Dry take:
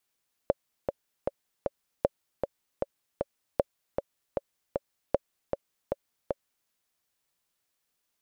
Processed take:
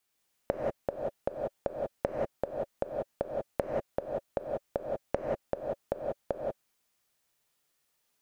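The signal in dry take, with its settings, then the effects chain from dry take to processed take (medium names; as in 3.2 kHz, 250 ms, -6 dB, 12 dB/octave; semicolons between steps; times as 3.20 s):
metronome 155 bpm, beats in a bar 4, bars 4, 560 Hz, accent 5.5 dB -9 dBFS
dynamic bell 700 Hz, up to +4 dB, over -47 dBFS, Q 3.2; compression, threshold -26 dBFS; gated-style reverb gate 210 ms rising, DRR -1 dB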